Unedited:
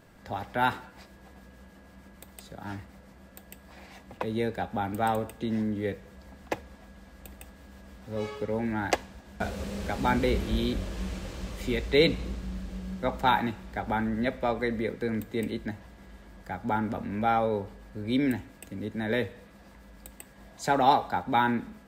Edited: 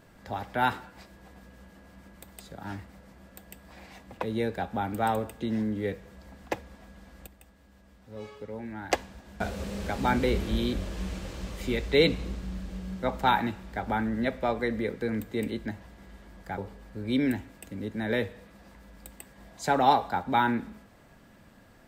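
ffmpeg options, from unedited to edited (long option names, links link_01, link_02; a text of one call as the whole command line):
ffmpeg -i in.wav -filter_complex "[0:a]asplit=4[link_01][link_02][link_03][link_04];[link_01]atrim=end=7.272[link_05];[link_02]atrim=start=7.268:end=8.912,asetpts=PTS-STARTPTS,volume=-8.5dB[link_06];[link_03]atrim=start=8.908:end=16.582[link_07];[link_04]atrim=start=17.578[link_08];[link_05][link_06]acrossfade=duration=0.004:curve1=hsin:curve2=hsin[link_09];[link_09][link_07]acrossfade=duration=0.004:curve1=hsin:curve2=hsin[link_10];[link_10][link_08]acrossfade=duration=0.004:curve1=hsin:curve2=hsin" out.wav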